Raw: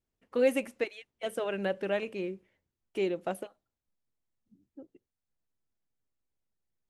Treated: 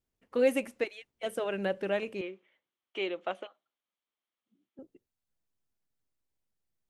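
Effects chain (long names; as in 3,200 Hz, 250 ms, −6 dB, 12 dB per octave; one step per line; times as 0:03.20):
0:02.21–0:04.79: loudspeaker in its box 390–5,800 Hz, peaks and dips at 430 Hz −3 dB, 1,200 Hz +6 dB, 2,200 Hz +4 dB, 3,200 Hz +9 dB, 5,000 Hz −9 dB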